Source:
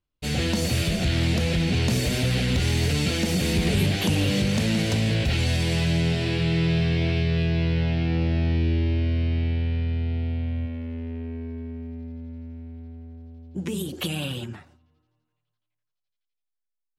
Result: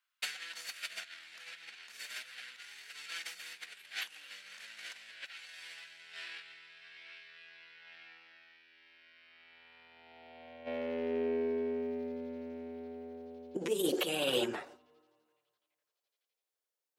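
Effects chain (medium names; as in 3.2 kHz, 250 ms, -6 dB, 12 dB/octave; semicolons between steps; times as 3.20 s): compressor with a negative ratio -31 dBFS, ratio -0.5; high-pass sweep 1.5 kHz -> 450 Hz, 9.22–11.16 s; trim -4 dB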